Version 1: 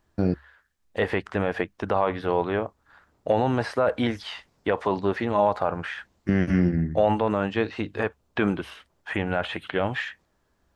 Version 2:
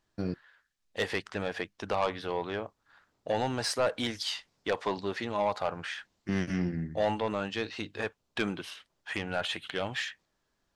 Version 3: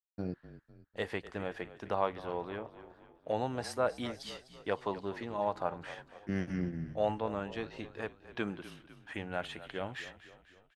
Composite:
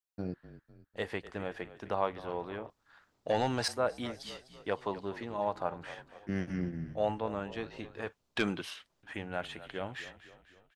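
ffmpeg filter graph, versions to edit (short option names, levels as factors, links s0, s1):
-filter_complex "[1:a]asplit=2[s0][s1];[2:a]asplit=3[s2][s3][s4];[s2]atrim=end=2.702[s5];[s0]atrim=start=2.698:end=3.682[s6];[s3]atrim=start=3.678:end=8.072[s7];[s1]atrim=start=8.068:end=9.032[s8];[s4]atrim=start=9.028[s9];[s5][s6]acrossfade=d=0.004:c1=hsin:c2=hsin[s10];[s10][s7]acrossfade=d=0.004:c1=hsin:c2=hsin[s11];[s11][s8]acrossfade=d=0.004:c1=hsin:c2=hsin[s12];[s12][s9]acrossfade=d=0.004:c1=hsin:c2=hsin"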